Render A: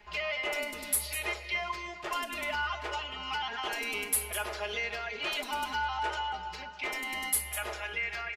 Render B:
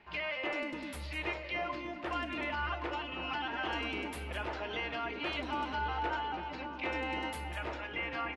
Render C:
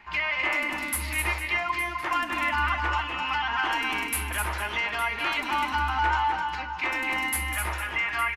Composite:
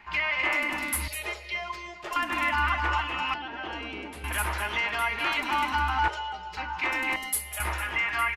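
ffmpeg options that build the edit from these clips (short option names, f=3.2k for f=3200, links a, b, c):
-filter_complex "[0:a]asplit=3[a][b][c];[2:a]asplit=5[d][e][f][g][h];[d]atrim=end=1.082[i];[a]atrim=start=1.078:end=2.162[j];[e]atrim=start=2.158:end=3.342[k];[1:a]atrim=start=3.338:end=4.242[l];[f]atrim=start=4.238:end=6.082[m];[b]atrim=start=6.078:end=6.572[n];[g]atrim=start=6.568:end=7.162[o];[c]atrim=start=7.158:end=7.602[p];[h]atrim=start=7.598[q];[i][j]acrossfade=d=0.004:c1=hsin:c2=hsin[r];[r][k]acrossfade=d=0.004:c1=hsin:c2=hsin[s];[s][l]acrossfade=d=0.004:c1=hsin:c2=hsin[t];[t][m]acrossfade=d=0.004:c1=hsin:c2=hsin[u];[u][n]acrossfade=d=0.004:c1=hsin:c2=hsin[v];[v][o]acrossfade=d=0.004:c1=hsin:c2=hsin[w];[w][p]acrossfade=d=0.004:c1=hsin:c2=hsin[x];[x][q]acrossfade=d=0.004:c1=hsin:c2=hsin"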